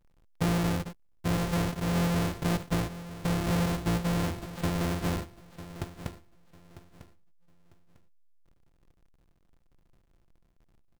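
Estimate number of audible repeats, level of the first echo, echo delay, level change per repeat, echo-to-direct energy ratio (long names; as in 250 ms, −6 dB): 2, −14.5 dB, 949 ms, −12.5 dB, −14.5 dB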